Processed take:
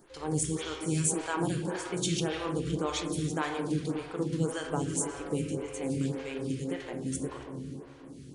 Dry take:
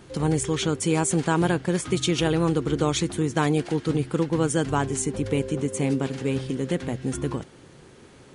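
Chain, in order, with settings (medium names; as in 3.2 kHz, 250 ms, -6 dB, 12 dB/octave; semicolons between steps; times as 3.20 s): treble shelf 2.8 kHz +8.5 dB; reverberation RT60 3.4 s, pre-delay 7 ms, DRR 1 dB; lamp-driven phase shifter 1.8 Hz; trim -9 dB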